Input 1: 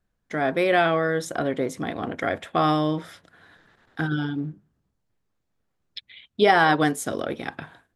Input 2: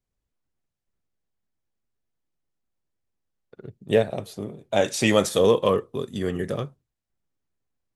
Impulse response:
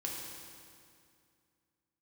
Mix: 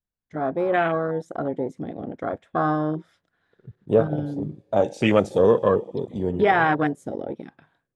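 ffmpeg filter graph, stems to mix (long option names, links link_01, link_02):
-filter_complex "[0:a]adynamicequalizer=threshold=0.00891:dfrequency=3700:dqfactor=0.85:tfrequency=3700:tqfactor=0.85:attack=5:release=100:ratio=0.375:range=2:mode=cutabove:tftype=bell,volume=-1dB,asplit=2[link_01][link_02];[1:a]bandreject=frequency=1900:width=20,volume=0.5dB,asplit=2[link_03][link_04];[link_04]volume=-15.5dB[link_05];[link_02]apad=whole_len=350793[link_06];[link_03][link_06]sidechaincompress=threshold=-24dB:ratio=8:attack=16:release=390[link_07];[2:a]atrim=start_sample=2205[link_08];[link_05][link_08]afir=irnorm=-1:irlink=0[link_09];[link_01][link_07][link_09]amix=inputs=3:normalize=0,afwtdn=0.0562,lowpass=8600"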